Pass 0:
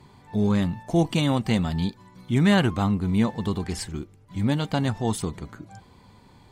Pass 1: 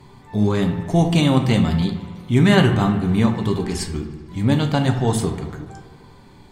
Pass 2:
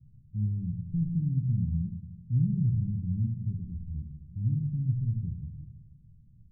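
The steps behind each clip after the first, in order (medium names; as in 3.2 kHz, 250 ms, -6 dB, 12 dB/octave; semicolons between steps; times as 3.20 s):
on a send: feedback echo behind a low-pass 76 ms, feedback 75%, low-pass 2.8 kHz, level -13 dB; on the sum: simulated room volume 42 m³, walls mixed, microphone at 0.33 m; trim +4 dB
inverse Chebyshev low-pass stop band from 680 Hz, stop band 70 dB; trim -6 dB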